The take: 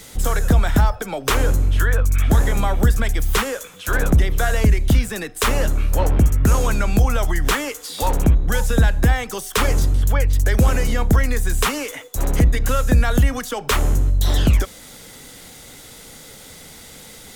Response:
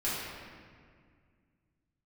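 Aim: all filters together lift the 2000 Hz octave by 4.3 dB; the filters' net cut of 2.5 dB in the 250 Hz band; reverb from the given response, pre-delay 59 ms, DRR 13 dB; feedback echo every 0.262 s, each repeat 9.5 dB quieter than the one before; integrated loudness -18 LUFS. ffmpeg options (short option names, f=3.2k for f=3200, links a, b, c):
-filter_complex "[0:a]equalizer=f=250:t=o:g=-3.5,equalizer=f=2k:t=o:g=5.5,aecho=1:1:262|524|786|1048:0.335|0.111|0.0365|0.012,asplit=2[a][b];[1:a]atrim=start_sample=2205,adelay=59[c];[b][c]afir=irnorm=-1:irlink=0,volume=-21dB[d];[a][d]amix=inputs=2:normalize=0,volume=0.5dB"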